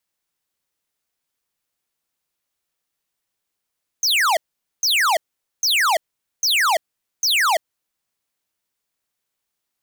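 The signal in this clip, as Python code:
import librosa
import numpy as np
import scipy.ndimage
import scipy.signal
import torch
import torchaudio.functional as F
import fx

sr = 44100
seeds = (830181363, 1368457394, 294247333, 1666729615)

y = fx.laser_zaps(sr, level_db=-17.0, start_hz=6600.0, end_hz=600.0, length_s=0.34, wave='square', shots=5, gap_s=0.46)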